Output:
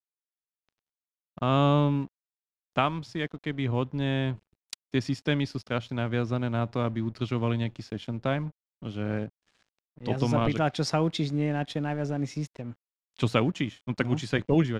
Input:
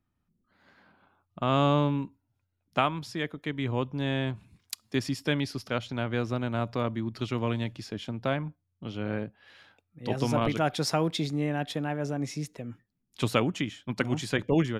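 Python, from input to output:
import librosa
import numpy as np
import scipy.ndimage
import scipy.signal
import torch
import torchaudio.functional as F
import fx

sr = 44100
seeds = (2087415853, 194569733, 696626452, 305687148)

y = np.sign(x) * np.maximum(np.abs(x) - 10.0 ** (-51.0 / 20.0), 0.0)
y = scipy.signal.sosfilt(scipy.signal.butter(2, 7000.0, 'lowpass', fs=sr, output='sos'), y)
y = fx.low_shelf(y, sr, hz=210.0, db=5.0)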